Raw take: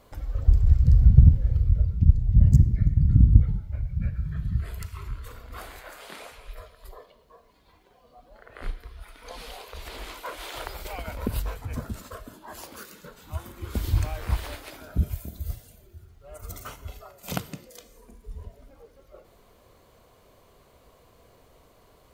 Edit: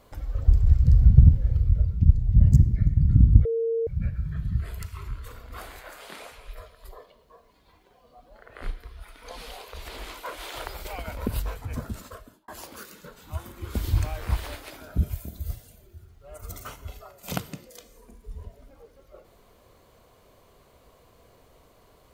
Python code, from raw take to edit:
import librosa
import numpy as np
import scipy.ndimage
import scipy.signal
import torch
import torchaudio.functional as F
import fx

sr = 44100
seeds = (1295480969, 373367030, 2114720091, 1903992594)

y = fx.edit(x, sr, fx.bleep(start_s=3.45, length_s=0.42, hz=457.0, db=-22.5),
    fx.fade_out_span(start_s=12.03, length_s=0.45), tone=tone)